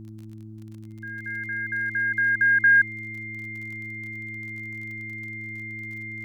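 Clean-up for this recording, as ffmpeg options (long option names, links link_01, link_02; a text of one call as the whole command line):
ffmpeg -i in.wav -af "adeclick=threshold=4,bandreject=frequency=109:width_type=h:width=4,bandreject=frequency=218:width_type=h:width=4,bandreject=frequency=327:width_type=h:width=4,bandreject=frequency=2100:width=30,agate=range=-21dB:threshold=-33dB" out.wav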